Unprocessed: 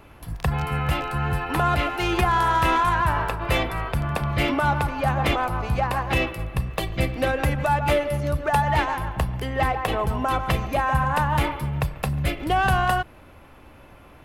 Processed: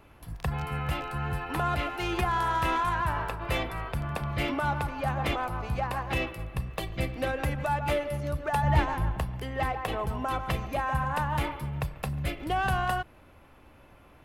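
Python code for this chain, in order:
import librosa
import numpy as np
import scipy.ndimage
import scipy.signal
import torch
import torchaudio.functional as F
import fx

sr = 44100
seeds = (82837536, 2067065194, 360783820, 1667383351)

y = fx.low_shelf(x, sr, hz=350.0, db=10.0, at=(8.63, 9.17))
y = F.gain(torch.from_numpy(y), -7.0).numpy()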